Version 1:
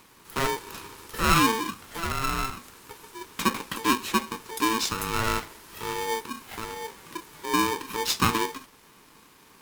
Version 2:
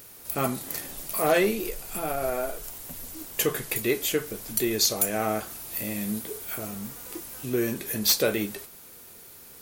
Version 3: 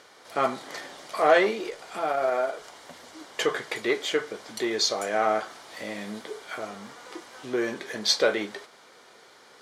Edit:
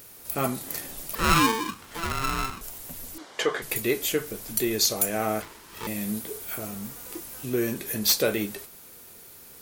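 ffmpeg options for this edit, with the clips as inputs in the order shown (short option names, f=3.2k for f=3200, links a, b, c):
-filter_complex "[0:a]asplit=2[a][b];[1:a]asplit=4[c][d][e][f];[c]atrim=end=1.152[g];[a]atrim=start=1.148:end=2.612[h];[d]atrim=start=2.608:end=3.182[i];[2:a]atrim=start=3.178:end=3.622[j];[e]atrim=start=3.618:end=5.422[k];[b]atrim=start=5.418:end=5.872[l];[f]atrim=start=5.868[m];[g][h]acrossfade=d=0.004:c1=hsin:c2=hsin[n];[n][i]acrossfade=d=0.004:c1=hsin:c2=hsin[o];[o][j]acrossfade=d=0.004:c1=hsin:c2=hsin[p];[p][k]acrossfade=d=0.004:c1=hsin:c2=hsin[q];[q][l]acrossfade=d=0.004:c1=hsin:c2=hsin[r];[r][m]acrossfade=d=0.004:c1=hsin:c2=hsin"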